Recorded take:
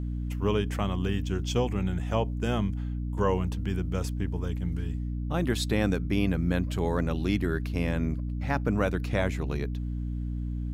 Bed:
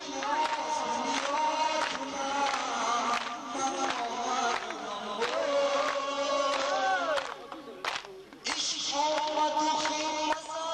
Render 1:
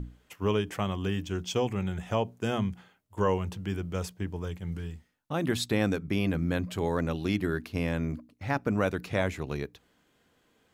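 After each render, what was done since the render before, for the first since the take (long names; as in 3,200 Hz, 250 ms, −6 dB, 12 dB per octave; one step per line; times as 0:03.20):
mains-hum notches 60/120/180/240/300 Hz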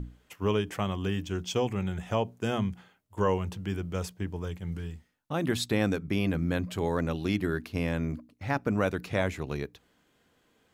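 no processing that can be heard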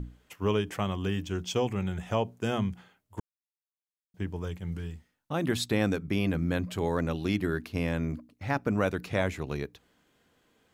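0:03.20–0:04.14: silence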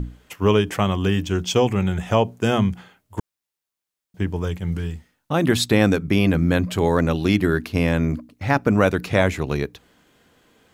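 level +10 dB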